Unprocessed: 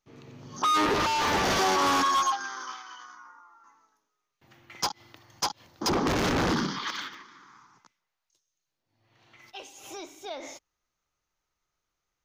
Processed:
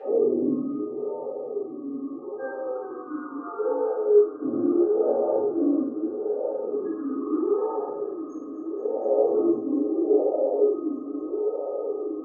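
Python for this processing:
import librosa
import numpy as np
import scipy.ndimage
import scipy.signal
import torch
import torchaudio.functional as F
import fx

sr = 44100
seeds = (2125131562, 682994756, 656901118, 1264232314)

y = fx.bin_compress(x, sr, power=0.4)
y = fx.peak_eq(y, sr, hz=580.0, db=11.0, octaves=1.5)
y = fx.over_compress(y, sr, threshold_db=-28.0, ratio=-1.0)
y = fx.chorus_voices(y, sr, voices=4, hz=0.39, base_ms=18, depth_ms=3.7, mix_pct=30)
y = fx.spec_topn(y, sr, count=16)
y = fx.echo_heads(y, sr, ms=240, heads='all three', feedback_pct=74, wet_db=-18.5)
y = fx.room_shoebox(y, sr, seeds[0], volume_m3=90.0, walls='mixed', distance_m=3.1)
y = fx.vowel_sweep(y, sr, vowels='e-i', hz=0.77)
y = y * librosa.db_to_amplitude(4.5)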